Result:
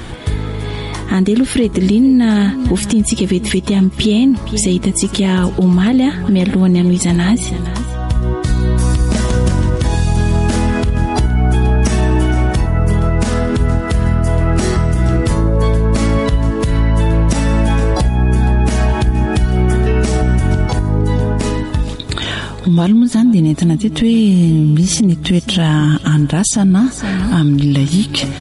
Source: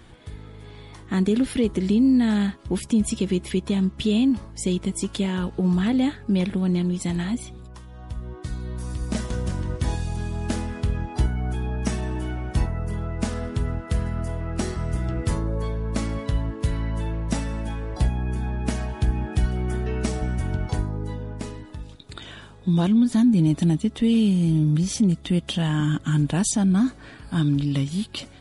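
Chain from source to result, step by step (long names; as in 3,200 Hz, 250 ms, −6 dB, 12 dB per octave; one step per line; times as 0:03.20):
on a send: single-tap delay 467 ms −19 dB
on the sum: downward compressor, threshold −29 dBFS, peak gain reduction 14 dB
boost into a limiter +24 dB
level −3.5 dB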